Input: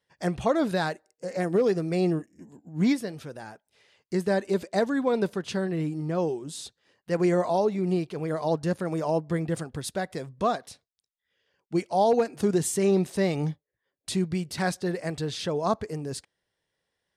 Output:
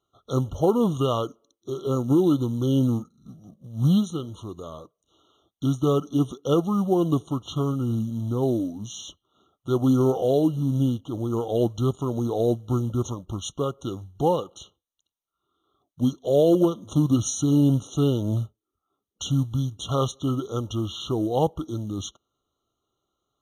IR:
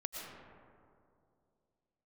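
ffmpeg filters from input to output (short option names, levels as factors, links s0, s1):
-af "acrusher=bits=7:mode=log:mix=0:aa=0.000001,asetrate=32325,aresample=44100,afftfilt=real='re*eq(mod(floor(b*sr/1024/1400),2),0)':imag='im*eq(mod(floor(b*sr/1024/1400),2),0)':win_size=1024:overlap=0.75,volume=1.41"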